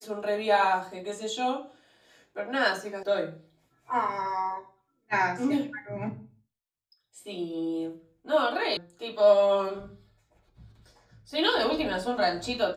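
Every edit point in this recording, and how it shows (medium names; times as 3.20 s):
3.03 s: sound stops dead
8.77 s: sound stops dead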